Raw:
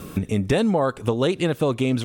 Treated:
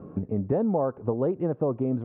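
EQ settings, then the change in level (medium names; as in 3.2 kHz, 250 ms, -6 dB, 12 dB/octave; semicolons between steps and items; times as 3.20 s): high-pass 83 Hz; four-pole ladder low-pass 1.1 kHz, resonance 20%; 0.0 dB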